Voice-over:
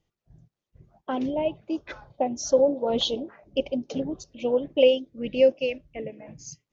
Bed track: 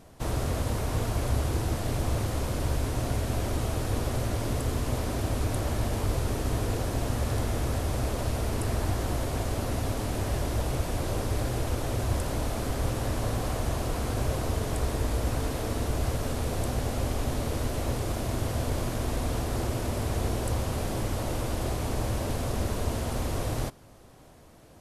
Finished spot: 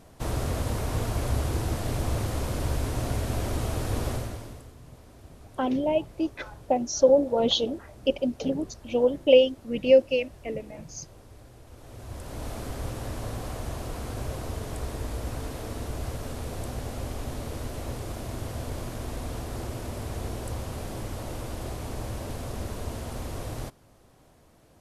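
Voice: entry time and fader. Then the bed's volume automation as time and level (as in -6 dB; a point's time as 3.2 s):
4.50 s, +1.5 dB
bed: 4.11 s 0 dB
4.75 s -21 dB
11.64 s -21 dB
12.48 s -5 dB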